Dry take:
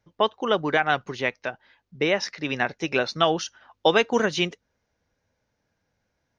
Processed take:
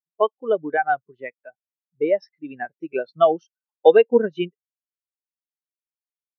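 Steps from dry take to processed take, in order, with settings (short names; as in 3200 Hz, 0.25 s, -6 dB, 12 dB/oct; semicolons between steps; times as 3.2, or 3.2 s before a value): spectral expander 2.5:1; gain +3.5 dB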